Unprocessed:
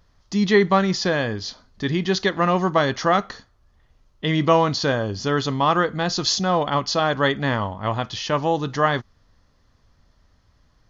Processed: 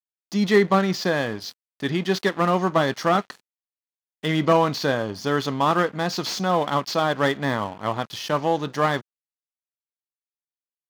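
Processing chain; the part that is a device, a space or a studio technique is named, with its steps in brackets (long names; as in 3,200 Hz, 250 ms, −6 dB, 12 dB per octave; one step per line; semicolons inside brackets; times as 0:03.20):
early transistor amplifier (dead-zone distortion −38.5 dBFS; slew-rate limiting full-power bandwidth 210 Hz)
high-pass filter 140 Hz 12 dB per octave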